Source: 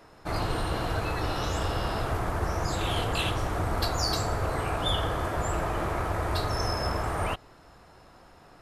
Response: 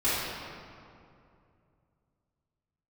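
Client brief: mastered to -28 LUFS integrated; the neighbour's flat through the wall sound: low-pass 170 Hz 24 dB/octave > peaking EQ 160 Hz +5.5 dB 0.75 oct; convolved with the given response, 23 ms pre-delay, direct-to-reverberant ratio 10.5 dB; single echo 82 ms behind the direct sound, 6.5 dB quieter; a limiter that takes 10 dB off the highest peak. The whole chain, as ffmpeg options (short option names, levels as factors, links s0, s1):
-filter_complex "[0:a]alimiter=limit=0.0708:level=0:latency=1,aecho=1:1:82:0.473,asplit=2[s0][s1];[1:a]atrim=start_sample=2205,adelay=23[s2];[s1][s2]afir=irnorm=-1:irlink=0,volume=0.0668[s3];[s0][s3]amix=inputs=2:normalize=0,lowpass=f=170:w=0.5412,lowpass=f=170:w=1.3066,equalizer=f=160:t=o:w=0.75:g=5.5,volume=2.24"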